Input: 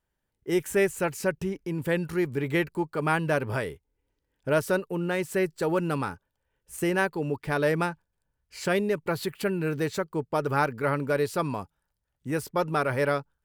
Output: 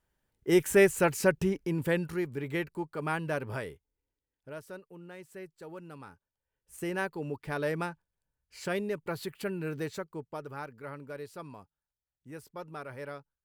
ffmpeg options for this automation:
-af "volume=14dB,afade=t=out:st=1.47:d=0.8:silence=0.354813,afade=t=out:st=3.67:d=0.86:silence=0.251189,afade=t=in:st=5.98:d=1.1:silence=0.251189,afade=t=out:st=9.81:d=0.72:silence=0.354813"

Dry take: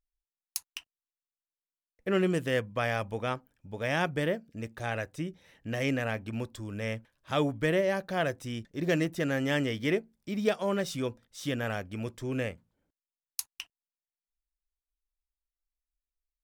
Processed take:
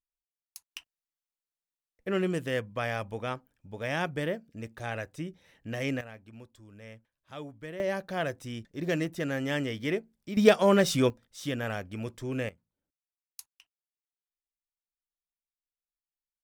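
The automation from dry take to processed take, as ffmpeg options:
-af "asetnsamples=n=441:p=0,asendcmd='0.71 volume volume -2dB;6.01 volume volume -14dB;7.8 volume volume -2dB;10.37 volume volume 8dB;11.1 volume volume -0.5dB;12.49 volume volume -11.5dB;13.54 volume volume -18dB',volume=-13dB"

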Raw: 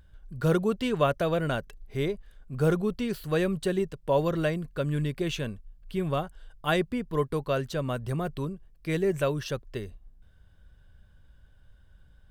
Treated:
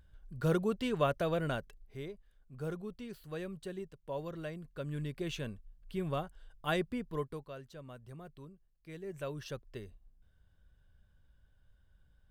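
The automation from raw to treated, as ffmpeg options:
-af "volume=11dB,afade=t=out:st=1.49:d=0.54:silence=0.354813,afade=t=in:st=4.43:d=1.08:silence=0.398107,afade=t=out:st=7.02:d=0.48:silence=0.251189,afade=t=in:st=9.02:d=0.46:silence=0.354813"

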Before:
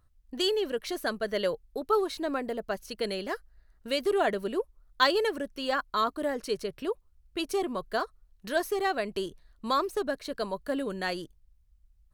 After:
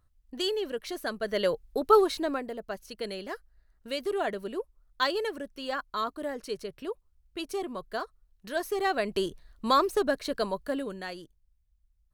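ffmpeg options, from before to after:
-af "volume=14dB,afade=t=in:st=1.12:d=0.83:silence=0.375837,afade=t=out:st=1.95:d=0.52:silence=0.316228,afade=t=in:st=8.52:d=0.74:silence=0.398107,afade=t=out:st=10.29:d=0.78:silence=0.281838"

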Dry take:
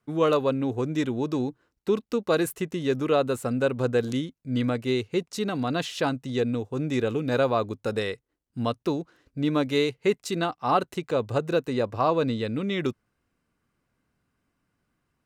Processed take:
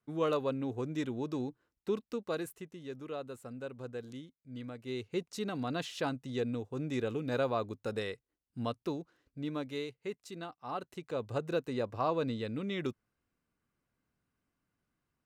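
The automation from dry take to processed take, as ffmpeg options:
-af "volume=8.5dB,afade=t=out:st=1.91:d=0.81:silence=0.354813,afade=t=in:st=4.78:d=0.4:silence=0.334965,afade=t=out:st=8.64:d=1.34:silence=0.398107,afade=t=in:st=10.73:d=0.72:silence=0.398107"

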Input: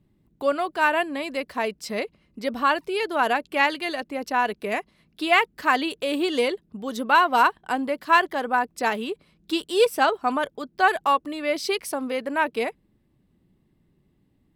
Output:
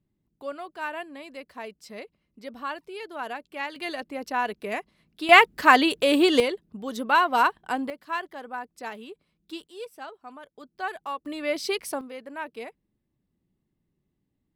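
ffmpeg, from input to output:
-af "asetnsamples=n=441:p=0,asendcmd='3.76 volume volume -4dB;5.29 volume volume 5dB;6.4 volume volume -2.5dB;7.9 volume volume -12.5dB;9.67 volume volume -20dB;10.57 volume volume -12.5dB;11.26 volume volume -2.5dB;12.01 volume volume -12dB',volume=-12dB"

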